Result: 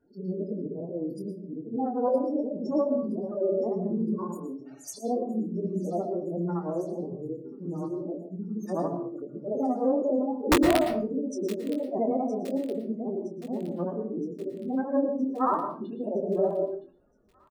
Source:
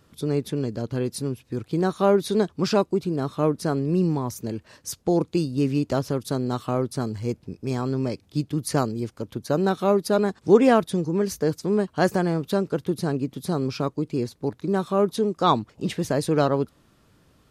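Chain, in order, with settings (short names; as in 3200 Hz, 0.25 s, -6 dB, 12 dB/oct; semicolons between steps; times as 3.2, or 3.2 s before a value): short-time reversal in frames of 0.175 s; bell 93 Hz -14.5 dB 1.3 oct; spectral gate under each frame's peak -10 dB strong; formant-preserving pitch shift +5 st; wow and flutter 120 cents; wrapped overs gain 14 dB; doubler 23 ms -7.5 dB; thin delay 0.967 s, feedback 63%, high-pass 2800 Hz, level -14.5 dB; reverb RT60 0.40 s, pre-delay 0.107 s, DRR 7.5 dB; mismatched tape noise reduction decoder only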